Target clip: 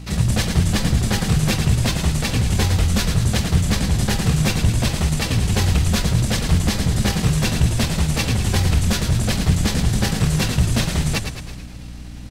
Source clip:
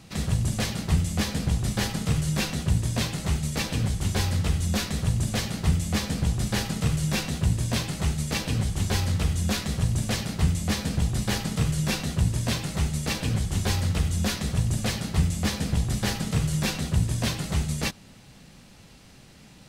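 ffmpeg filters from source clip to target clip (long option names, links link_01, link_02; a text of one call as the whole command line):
ffmpeg -i in.wav -filter_complex "[0:a]asplit=2[link_01][link_02];[link_02]aecho=0:1:571|1142:0.0891|0.0178[link_03];[link_01][link_03]amix=inputs=2:normalize=0,acontrast=79,atempo=1.6,aeval=exprs='val(0)+0.02*(sin(2*PI*60*n/s)+sin(2*PI*2*60*n/s)/2+sin(2*PI*3*60*n/s)/3+sin(2*PI*4*60*n/s)/4+sin(2*PI*5*60*n/s)/5)':channel_layout=same,asplit=2[link_04][link_05];[link_05]asplit=7[link_06][link_07][link_08][link_09][link_10][link_11][link_12];[link_06]adelay=108,afreqshift=-44,volume=-7.5dB[link_13];[link_07]adelay=216,afreqshift=-88,volume=-12.7dB[link_14];[link_08]adelay=324,afreqshift=-132,volume=-17.9dB[link_15];[link_09]adelay=432,afreqshift=-176,volume=-23.1dB[link_16];[link_10]adelay=540,afreqshift=-220,volume=-28.3dB[link_17];[link_11]adelay=648,afreqshift=-264,volume=-33.5dB[link_18];[link_12]adelay=756,afreqshift=-308,volume=-38.7dB[link_19];[link_13][link_14][link_15][link_16][link_17][link_18][link_19]amix=inputs=7:normalize=0[link_20];[link_04][link_20]amix=inputs=2:normalize=0" out.wav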